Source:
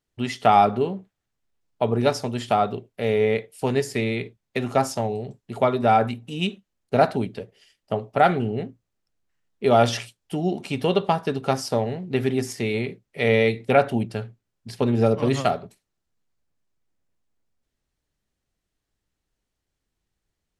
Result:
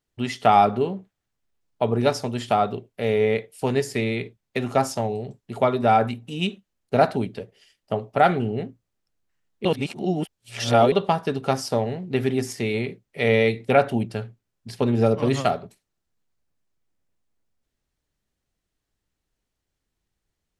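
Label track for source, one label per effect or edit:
9.650000	10.920000	reverse

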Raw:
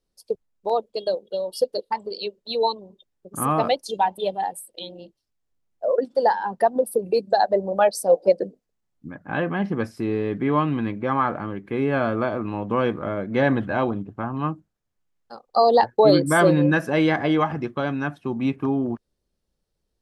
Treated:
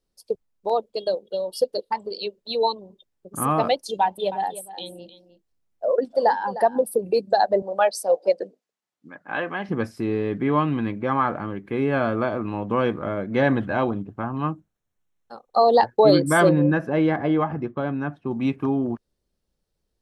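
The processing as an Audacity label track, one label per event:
4.010000	6.860000	echo 0.306 s -14.5 dB
7.620000	9.690000	weighting filter A
14.510000	15.710000	Butterworth band-stop 4800 Hz, Q 6.3
16.490000	18.310000	LPF 1100 Hz 6 dB/oct

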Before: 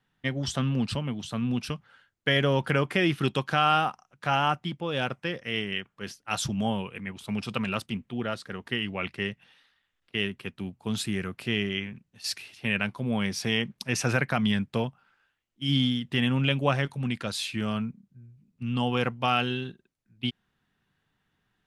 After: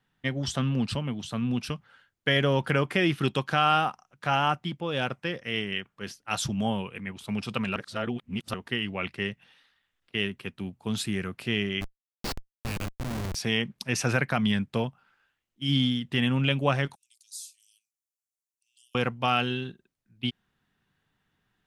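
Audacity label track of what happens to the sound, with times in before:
7.760000	8.540000	reverse
11.810000	13.350000	Schmitt trigger flips at -28 dBFS
16.950000	18.950000	inverse Chebyshev high-pass stop band from 1100 Hz, stop band 80 dB

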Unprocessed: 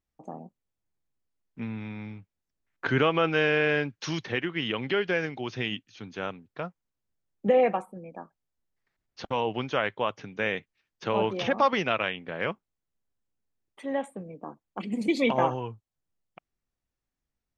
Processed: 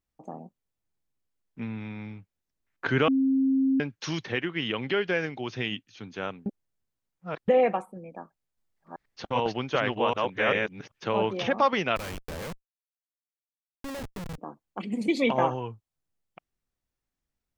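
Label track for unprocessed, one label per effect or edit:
3.080000	3.800000	bleep 267 Hz -20 dBFS
6.460000	7.480000	reverse
8.180000	11.120000	reverse delay 0.391 s, level 0 dB
11.960000	14.380000	Schmitt trigger flips at -37.5 dBFS

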